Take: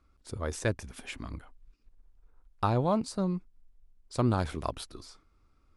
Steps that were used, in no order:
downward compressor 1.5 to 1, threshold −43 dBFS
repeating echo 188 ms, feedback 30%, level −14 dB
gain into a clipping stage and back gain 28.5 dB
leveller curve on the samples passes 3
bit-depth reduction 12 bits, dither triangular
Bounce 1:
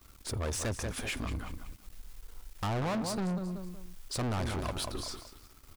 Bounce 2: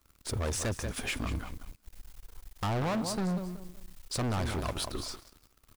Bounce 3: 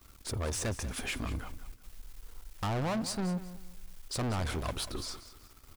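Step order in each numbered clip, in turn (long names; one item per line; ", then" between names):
bit-depth reduction, then repeating echo, then gain into a clipping stage and back, then downward compressor, then leveller curve on the samples
downward compressor, then repeating echo, then bit-depth reduction, then leveller curve on the samples, then gain into a clipping stage and back
gain into a clipping stage and back, then downward compressor, then bit-depth reduction, then leveller curve on the samples, then repeating echo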